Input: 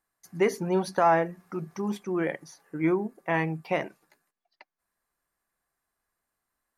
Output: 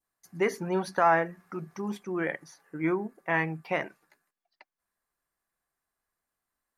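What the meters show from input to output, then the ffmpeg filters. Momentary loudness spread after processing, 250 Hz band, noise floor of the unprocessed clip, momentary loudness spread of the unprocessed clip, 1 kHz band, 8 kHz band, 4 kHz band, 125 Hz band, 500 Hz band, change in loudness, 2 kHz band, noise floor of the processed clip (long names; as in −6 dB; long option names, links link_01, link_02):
17 LU, −3.5 dB, −85 dBFS, 16 LU, −1.0 dB, −3.0 dB, −2.0 dB, −3.5 dB, −3.0 dB, −1.5 dB, +2.0 dB, below −85 dBFS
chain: -af "adynamicequalizer=threshold=0.00891:dfrequency=1600:dqfactor=1.1:tfrequency=1600:tqfactor=1.1:attack=5:release=100:ratio=0.375:range=3.5:mode=boostabove:tftype=bell,volume=-3.5dB"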